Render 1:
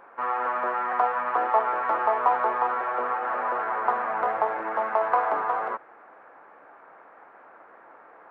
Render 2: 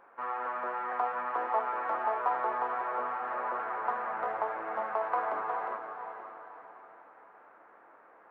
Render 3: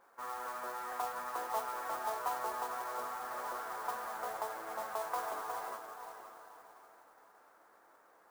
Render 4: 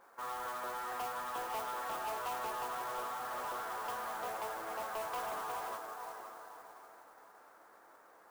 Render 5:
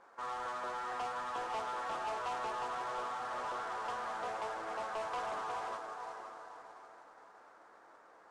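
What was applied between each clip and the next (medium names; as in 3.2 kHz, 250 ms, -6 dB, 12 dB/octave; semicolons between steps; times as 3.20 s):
echo that smears into a reverb 507 ms, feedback 42%, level -8 dB; trim -8 dB
modulation noise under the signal 13 dB; trim -7 dB
saturation -38.5 dBFS, distortion -10 dB; trim +3.5 dB
Bessel low-pass 5.8 kHz, order 6; trim +1 dB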